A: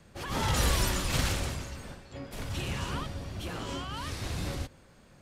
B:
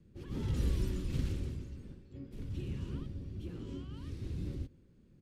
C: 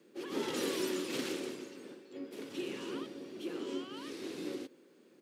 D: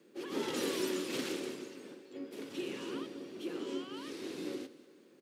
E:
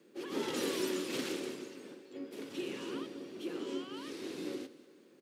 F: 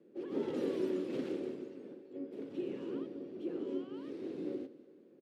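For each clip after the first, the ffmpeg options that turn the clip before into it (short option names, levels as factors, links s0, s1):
-af "firequalizer=gain_entry='entry(360,0);entry(660,-21);entry(2700,-15);entry(7200,-19)':delay=0.05:min_phase=1,volume=0.668"
-af "highpass=f=330:w=0.5412,highpass=f=330:w=1.3066,volume=3.76"
-af "aecho=1:1:193|386|579|772:0.126|0.0579|0.0266|0.0123"
-af anull
-af "firequalizer=gain_entry='entry(530,0);entry(980,-10);entry(6100,-22);entry(14000,-26)':delay=0.05:min_phase=1,volume=1.12"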